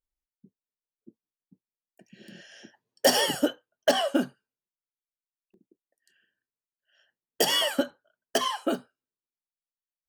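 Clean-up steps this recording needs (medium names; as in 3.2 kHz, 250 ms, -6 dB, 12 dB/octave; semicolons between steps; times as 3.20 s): interpolate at 5.54 s, 1.1 ms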